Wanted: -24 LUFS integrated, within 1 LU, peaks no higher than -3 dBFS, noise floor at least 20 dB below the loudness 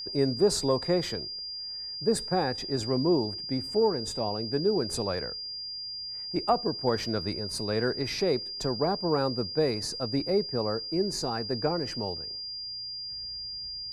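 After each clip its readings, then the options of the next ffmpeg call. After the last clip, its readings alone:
steady tone 4.8 kHz; tone level -35 dBFS; loudness -29.0 LUFS; peak level -12.5 dBFS; loudness target -24.0 LUFS
-> -af "bandreject=f=4800:w=30"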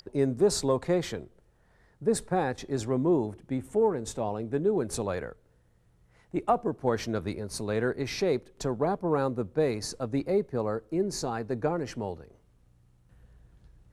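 steady tone not found; loudness -29.5 LUFS; peak level -13.0 dBFS; loudness target -24.0 LUFS
-> -af "volume=1.88"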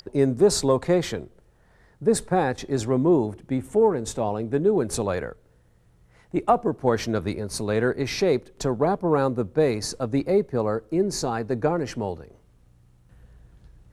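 loudness -24.0 LUFS; peak level -7.5 dBFS; noise floor -59 dBFS

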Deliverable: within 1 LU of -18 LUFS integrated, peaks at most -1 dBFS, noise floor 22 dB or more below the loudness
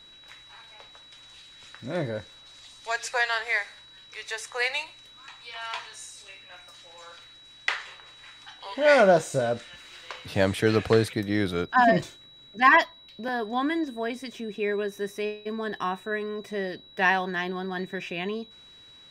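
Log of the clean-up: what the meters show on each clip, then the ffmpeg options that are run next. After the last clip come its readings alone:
steady tone 3.9 kHz; tone level -49 dBFS; loudness -26.0 LUFS; peak level -5.0 dBFS; loudness target -18.0 LUFS
-> -af "bandreject=f=3900:w=30"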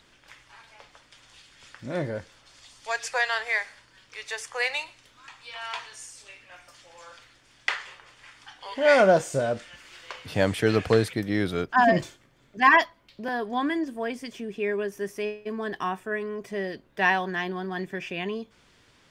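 steady tone not found; loudness -26.5 LUFS; peak level -5.0 dBFS; loudness target -18.0 LUFS
-> -af "volume=2.66,alimiter=limit=0.891:level=0:latency=1"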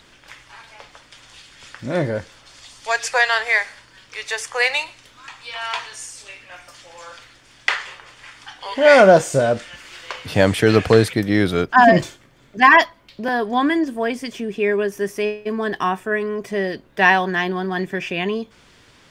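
loudness -18.5 LUFS; peak level -1.0 dBFS; noise floor -52 dBFS

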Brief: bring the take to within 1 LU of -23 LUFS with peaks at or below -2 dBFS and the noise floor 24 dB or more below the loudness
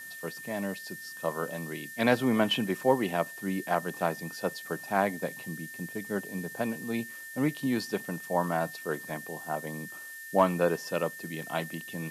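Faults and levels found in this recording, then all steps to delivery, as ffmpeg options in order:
steady tone 1.8 kHz; tone level -42 dBFS; noise floor -44 dBFS; noise floor target -56 dBFS; loudness -31.5 LUFS; peak level -9.5 dBFS; loudness target -23.0 LUFS
-> -af "bandreject=f=1800:w=30"
-af "afftdn=nr=12:nf=-44"
-af "volume=2.66,alimiter=limit=0.794:level=0:latency=1"

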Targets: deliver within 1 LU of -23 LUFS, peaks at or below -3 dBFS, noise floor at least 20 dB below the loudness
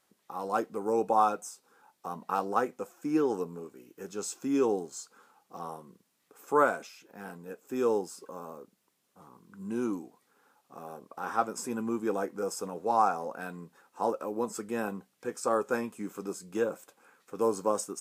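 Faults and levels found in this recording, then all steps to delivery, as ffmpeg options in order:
loudness -31.5 LUFS; peak level -12.0 dBFS; loudness target -23.0 LUFS
-> -af "volume=2.66"

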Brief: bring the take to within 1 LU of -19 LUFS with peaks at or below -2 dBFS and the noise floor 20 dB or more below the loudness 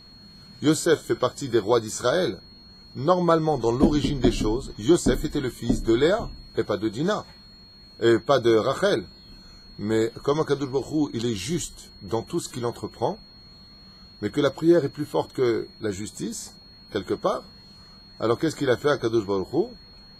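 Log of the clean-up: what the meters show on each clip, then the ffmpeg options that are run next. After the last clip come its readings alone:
steady tone 4.3 kHz; tone level -48 dBFS; loudness -24.5 LUFS; peak level -4.5 dBFS; loudness target -19.0 LUFS
-> -af "bandreject=f=4300:w=30"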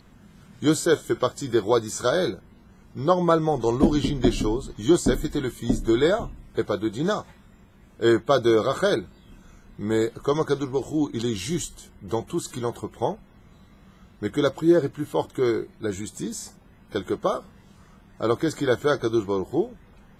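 steady tone not found; loudness -24.5 LUFS; peak level -4.5 dBFS; loudness target -19.0 LUFS
-> -af "volume=1.88,alimiter=limit=0.794:level=0:latency=1"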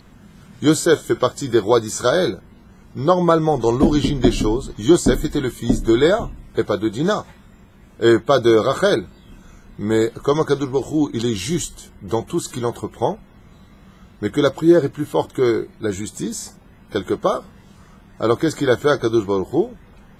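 loudness -19.0 LUFS; peak level -2.0 dBFS; noise floor -47 dBFS

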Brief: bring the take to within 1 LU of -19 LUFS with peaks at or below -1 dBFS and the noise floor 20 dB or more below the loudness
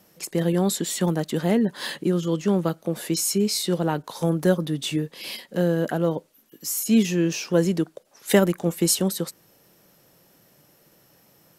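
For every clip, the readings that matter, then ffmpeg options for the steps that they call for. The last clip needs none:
loudness -24.0 LUFS; peak level -5.0 dBFS; loudness target -19.0 LUFS
-> -af "volume=1.78,alimiter=limit=0.891:level=0:latency=1"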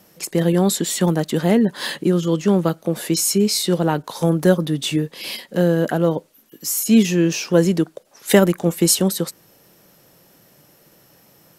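loudness -19.0 LUFS; peak level -1.0 dBFS; noise floor -54 dBFS

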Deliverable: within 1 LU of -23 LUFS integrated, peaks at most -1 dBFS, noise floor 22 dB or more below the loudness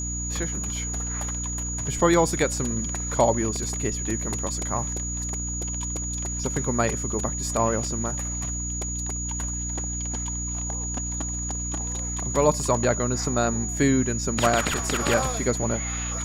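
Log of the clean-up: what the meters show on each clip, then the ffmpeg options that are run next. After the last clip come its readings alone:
hum 60 Hz; highest harmonic 300 Hz; hum level -30 dBFS; steady tone 6.8 kHz; tone level -30 dBFS; loudness -25.5 LUFS; peak level -6.5 dBFS; loudness target -23.0 LUFS
-> -af "bandreject=f=60:t=h:w=4,bandreject=f=120:t=h:w=4,bandreject=f=180:t=h:w=4,bandreject=f=240:t=h:w=4,bandreject=f=300:t=h:w=4"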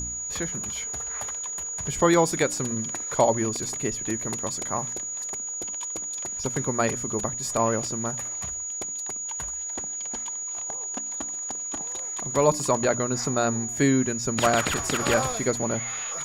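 hum not found; steady tone 6.8 kHz; tone level -30 dBFS
-> -af "bandreject=f=6800:w=30"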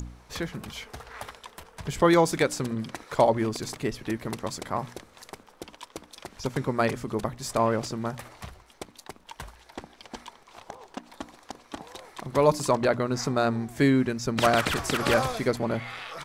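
steady tone not found; loudness -26.5 LUFS; peak level -7.5 dBFS; loudness target -23.0 LUFS
-> -af "volume=1.5"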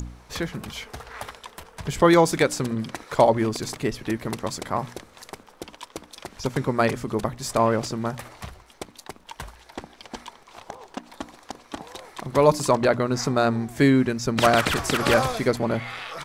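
loudness -23.0 LUFS; peak level -4.0 dBFS; noise floor -53 dBFS

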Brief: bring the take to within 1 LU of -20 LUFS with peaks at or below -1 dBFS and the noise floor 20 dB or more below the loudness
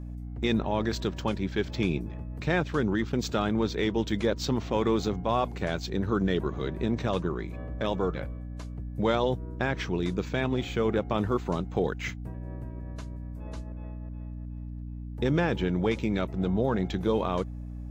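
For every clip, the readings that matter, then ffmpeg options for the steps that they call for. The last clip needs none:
hum 60 Hz; highest harmonic 300 Hz; hum level -35 dBFS; loudness -29.5 LUFS; peak level -12.5 dBFS; loudness target -20.0 LUFS
-> -af "bandreject=f=60:t=h:w=4,bandreject=f=120:t=h:w=4,bandreject=f=180:t=h:w=4,bandreject=f=240:t=h:w=4,bandreject=f=300:t=h:w=4"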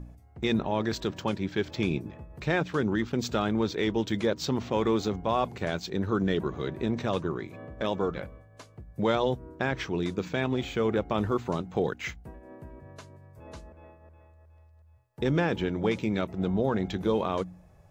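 hum not found; loudness -29.5 LUFS; peak level -13.0 dBFS; loudness target -20.0 LUFS
-> -af "volume=2.99"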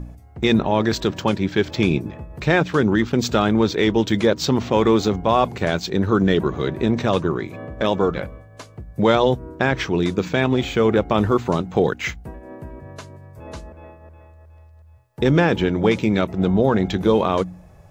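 loudness -20.0 LUFS; peak level -3.5 dBFS; noise floor -46 dBFS

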